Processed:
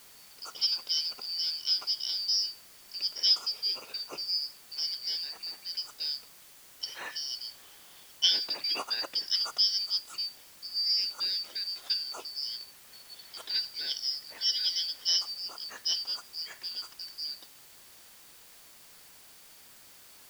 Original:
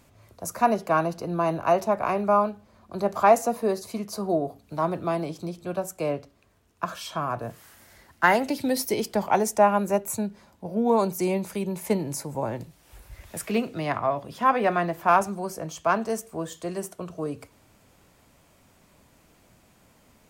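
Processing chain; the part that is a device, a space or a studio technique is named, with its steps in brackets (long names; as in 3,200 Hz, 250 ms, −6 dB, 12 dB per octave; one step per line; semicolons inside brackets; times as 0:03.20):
split-band scrambled radio (band-splitting scrambler in four parts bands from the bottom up 4321; band-pass filter 310–3,400 Hz; white noise bed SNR 20 dB)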